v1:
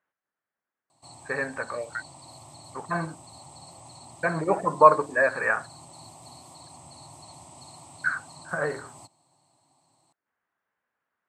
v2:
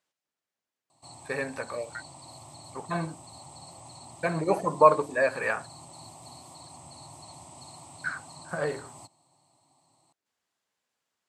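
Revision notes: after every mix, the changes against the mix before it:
speech: remove low-pass with resonance 1,600 Hz, resonance Q 2.1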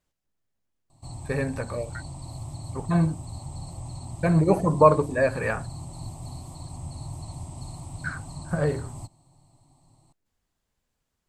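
master: remove meter weighting curve A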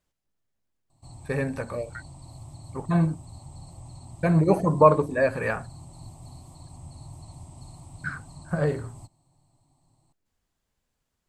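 background −6.5 dB

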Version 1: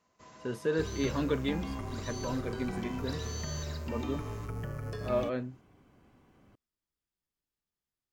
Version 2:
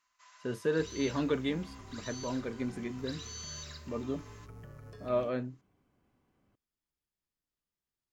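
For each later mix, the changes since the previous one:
first sound: add high-pass filter 1,100 Hz 24 dB per octave
second sound −11.5 dB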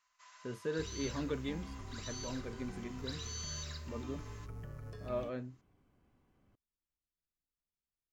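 speech −7.5 dB
master: add low-shelf EQ 72 Hz +9.5 dB

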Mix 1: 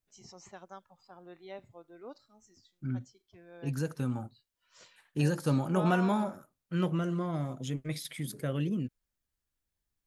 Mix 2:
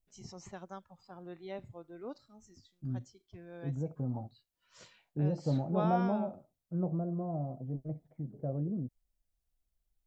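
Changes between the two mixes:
second voice: add transistor ladder low-pass 780 Hz, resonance 65%
master: add low-shelf EQ 250 Hz +11.5 dB

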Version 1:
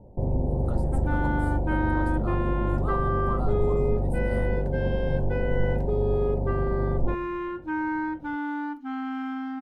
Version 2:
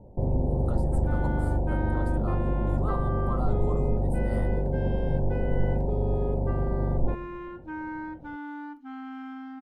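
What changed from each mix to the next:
second sound −7.5 dB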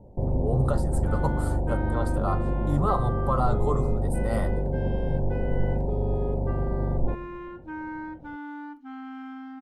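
speech +11.0 dB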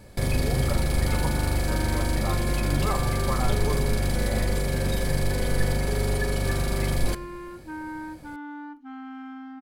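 speech −5.0 dB
first sound: remove elliptic low-pass filter 900 Hz, stop band 40 dB

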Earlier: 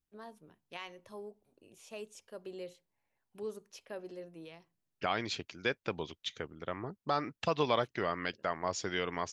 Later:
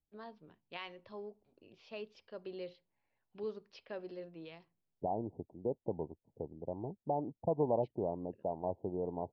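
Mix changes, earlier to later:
second voice: add Butterworth low-pass 910 Hz 96 dB per octave
master: add Chebyshev low-pass filter 4,900 Hz, order 5

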